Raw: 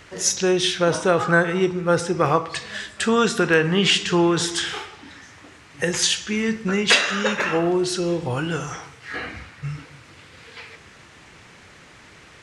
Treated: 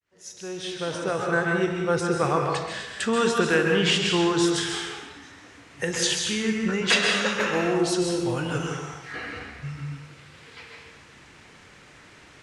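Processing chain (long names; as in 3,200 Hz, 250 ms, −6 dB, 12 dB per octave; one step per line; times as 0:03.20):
fade in at the beginning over 1.76 s
0:07.35–0:08.58: high-shelf EQ 7,200 Hz +6 dB
dense smooth reverb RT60 0.97 s, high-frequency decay 0.9×, pre-delay 120 ms, DRR 2 dB
level −5 dB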